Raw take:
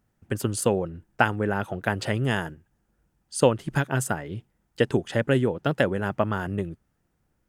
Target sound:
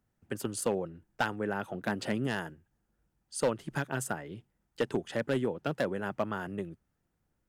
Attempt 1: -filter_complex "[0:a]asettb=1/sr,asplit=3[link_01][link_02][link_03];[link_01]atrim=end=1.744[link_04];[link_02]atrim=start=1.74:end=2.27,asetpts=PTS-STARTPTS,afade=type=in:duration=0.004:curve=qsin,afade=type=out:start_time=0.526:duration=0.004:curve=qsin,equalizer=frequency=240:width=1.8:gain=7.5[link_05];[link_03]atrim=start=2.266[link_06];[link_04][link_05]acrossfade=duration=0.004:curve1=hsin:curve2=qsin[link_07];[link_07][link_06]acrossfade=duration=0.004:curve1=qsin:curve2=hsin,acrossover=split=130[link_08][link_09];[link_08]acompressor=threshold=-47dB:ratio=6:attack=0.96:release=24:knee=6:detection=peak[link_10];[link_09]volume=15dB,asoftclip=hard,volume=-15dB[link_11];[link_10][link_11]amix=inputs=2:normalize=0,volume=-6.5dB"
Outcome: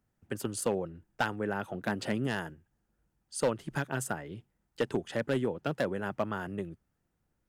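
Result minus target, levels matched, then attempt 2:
downward compressor: peak gain reduction −6 dB
-filter_complex "[0:a]asettb=1/sr,asplit=3[link_01][link_02][link_03];[link_01]atrim=end=1.744[link_04];[link_02]atrim=start=1.74:end=2.27,asetpts=PTS-STARTPTS,afade=type=in:duration=0.004:curve=qsin,afade=type=out:start_time=0.526:duration=0.004:curve=qsin,equalizer=frequency=240:width=1.8:gain=7.5[link_05];[link_03]atrim=start=2.266[link_06];[link_04][link_05]acrossfade=duration=0.004:curve1=hsin:curve2=qsin[link_07];[link_07][link_06]acrossfade=duration=0.004:curve1=qsin:curve2=hsin,acrossover=split=130[link_08][link_09];[link_08]acompressor=threshold=-54dB:ratio=6:attack=0.96:release=24:knee=6:detection=peak[link_10];[link_09]volume=15dB,asoftclip=hard,volume=-15dB[link_11];[link_10][link_11]amix=inputs=2:normalize=0,volume=-6.5dB"

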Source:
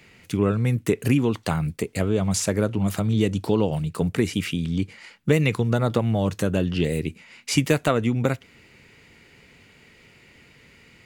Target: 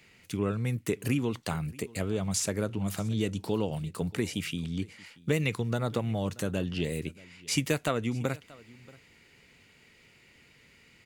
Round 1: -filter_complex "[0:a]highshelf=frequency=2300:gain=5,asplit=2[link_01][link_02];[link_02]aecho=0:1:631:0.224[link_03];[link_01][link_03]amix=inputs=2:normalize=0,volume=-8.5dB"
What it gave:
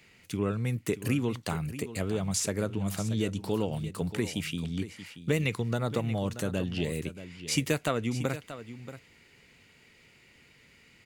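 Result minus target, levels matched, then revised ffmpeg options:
echo-to-direct +9.5 dB
-filter_complex "[0:a]highshelf=frequency=2300:gain=5,asplit=2[link_01][link_02];[link_02]aecho=0:1:631:0.075[link_03];[link_01][link_03]amix=inputs=2:normalize=0,volume=-8.5dB"

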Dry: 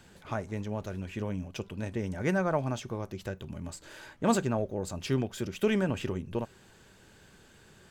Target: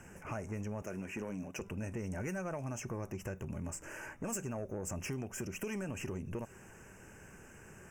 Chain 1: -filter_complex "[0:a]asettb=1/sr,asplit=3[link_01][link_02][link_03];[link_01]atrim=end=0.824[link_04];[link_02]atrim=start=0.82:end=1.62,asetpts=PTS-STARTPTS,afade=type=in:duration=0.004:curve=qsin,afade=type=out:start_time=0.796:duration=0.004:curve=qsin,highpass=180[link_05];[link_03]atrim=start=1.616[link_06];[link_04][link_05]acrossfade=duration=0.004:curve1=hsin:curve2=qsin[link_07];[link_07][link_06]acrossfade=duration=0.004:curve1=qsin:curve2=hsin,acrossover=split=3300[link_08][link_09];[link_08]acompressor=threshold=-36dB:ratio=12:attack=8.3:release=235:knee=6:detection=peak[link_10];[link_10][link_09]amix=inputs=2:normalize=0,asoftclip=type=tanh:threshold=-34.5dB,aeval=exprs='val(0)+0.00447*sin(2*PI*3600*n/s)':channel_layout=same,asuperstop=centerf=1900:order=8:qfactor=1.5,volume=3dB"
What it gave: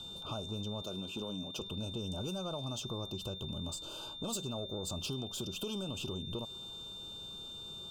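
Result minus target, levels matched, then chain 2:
4,000 Hz band +17.5 dB
-filter_complex "[0:a]asettb=1/sr,asplit=3[link_01][link_02][link_03];[link_01]atrim=end=0.824[link_04];[link_02]atrim=start=0.82:end=1.62,asetpts=PTS-STARTPTS,afade=type=in:duration=0.004:curve=qsin,afade=type=out:start_time=0.796:duration=0.004:curve=qsin,highpass=180[link_05];[link_03]atrim=start=1.616[link_06];[link_04][link_05]acrossfade=duration=0.004:curve1=hsin:curve2=qsin[link_07];[link_07][link_06]acrossfade=duration=0.004:curve1=qsin:curve2=hsin,acrossover=split=3300[link_08][link_09];[link_08]acompressor=threshold=-36dB:ratio=12:attack=8.3:release=235:knee=6:detection=peak[link_10];[link_10][link_09]amix=inputs=2:normalize=0,asoftclip=type=tanh:threshold=-34.5dB,aeval=exprs='val(0)+0.00447*sin(2*PI*3600*n/s)':channel_layout=same,asuperstop=centerf=3900:order=8:qfactor=1.5,volume=3dB"

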